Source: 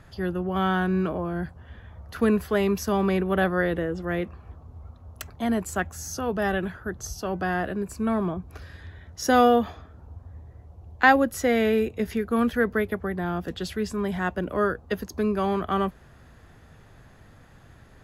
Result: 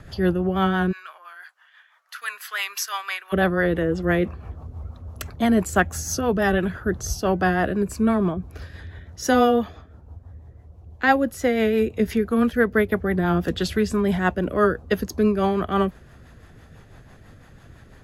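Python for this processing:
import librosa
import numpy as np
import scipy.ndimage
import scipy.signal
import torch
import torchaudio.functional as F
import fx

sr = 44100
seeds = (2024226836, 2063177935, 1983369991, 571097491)

y = fx.highpass(x, sr, hz=1200.0, slope=24, at=(0.91, 3.32), fade=0.02)
y = fx.rider(y, sr, range_db=4, speed_s=0.5)
y = fx.rotary(y, sr, hz=6.0)
y = y * 10.0 ** (6.0 / 20.0)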